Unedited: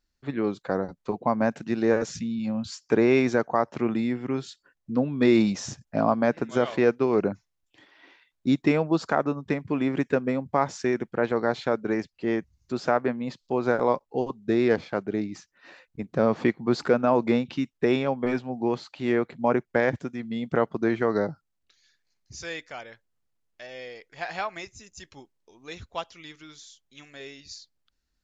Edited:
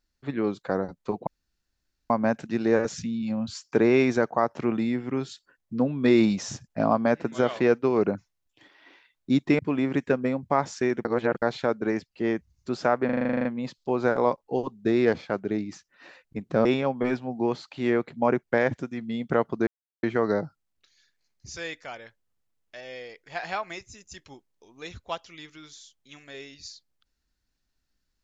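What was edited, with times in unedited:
1.27 insert room tone 0.83 s
8.76–9.62 cut
11.08–11.45 reverse
13.08 stutter 0.04 s, 11 plays
16.28–17.87 cut
20.89 insert silence 0.36 s

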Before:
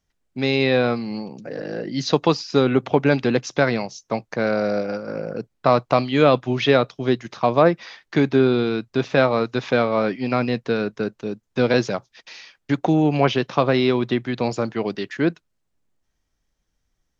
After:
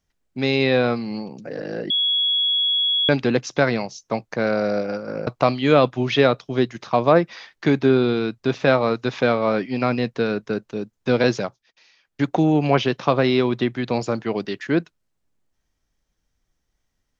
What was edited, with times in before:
1.9–3.09 bleep 3350 Hz -17 dBFS
5.27–5.77 cut
11.9–12.74 dip -15 dB, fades 0.26 s

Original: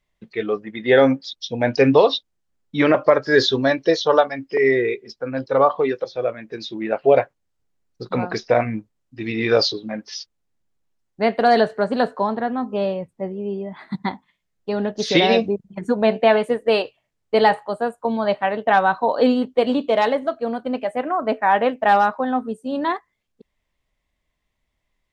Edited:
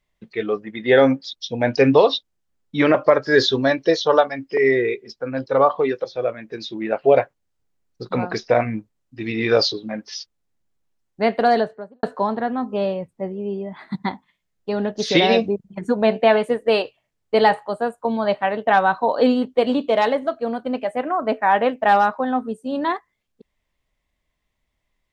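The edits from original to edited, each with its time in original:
11.35–12.03 studio fade out

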